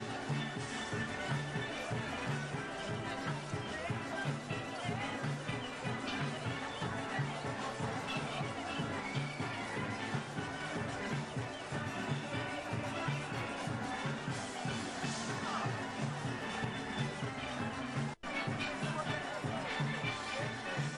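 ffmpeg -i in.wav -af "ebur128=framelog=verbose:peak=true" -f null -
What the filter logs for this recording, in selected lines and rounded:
Integrated loudness:
  I:         -38.6 LUFS
  Threshold: -48.6 LUFS
Loudness range:
  LRA:         1.0 LU
  Threshold: -58.7 LUFS
  LRA low:   -39.1 LUFS
  LRA high:  -38.0 LUFS
True peak:
  Peak:      -22.8 dBFS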